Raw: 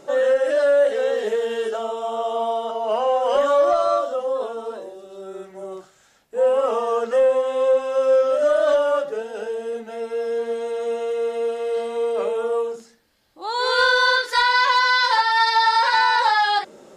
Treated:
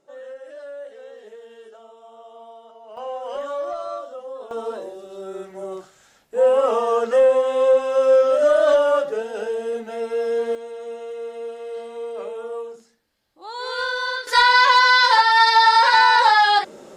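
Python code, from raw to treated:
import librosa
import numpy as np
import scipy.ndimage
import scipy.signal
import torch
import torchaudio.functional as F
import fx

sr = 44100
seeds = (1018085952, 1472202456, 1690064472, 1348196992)

y = fx.gain(x, sr, db=fx.steps((0.0, -19.5), (2.97, -10.5), (4.51, 2.0), (10.55, -8.0), (14.27, 3.5)))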